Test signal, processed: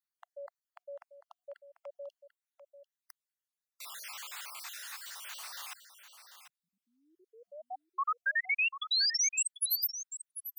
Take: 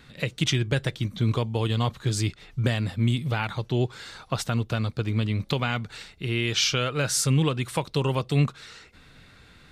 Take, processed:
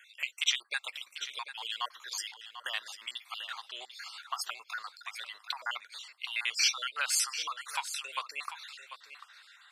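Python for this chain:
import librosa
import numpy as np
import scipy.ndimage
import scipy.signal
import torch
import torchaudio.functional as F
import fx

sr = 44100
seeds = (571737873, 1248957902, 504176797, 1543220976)

p1 = fx.spec_dropout(x, sr, seeds[0], share_pct=51)
p2 = scipy.signal.sosfilt(scipy.signal.butter(4, 1000.0, 'highpass', fs=sr, output='sos'), p1)
y = p2 + fx.echo_single(p2, sr, ms=743, db=-11.5, dry=0)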